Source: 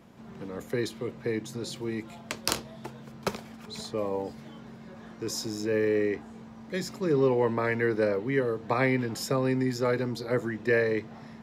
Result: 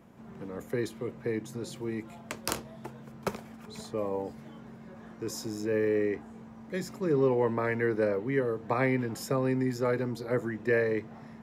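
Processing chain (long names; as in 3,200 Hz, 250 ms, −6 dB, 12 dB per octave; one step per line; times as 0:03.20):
parametric band 4,200 Hz −7 dB 1.3 octaves
level −1.5 dB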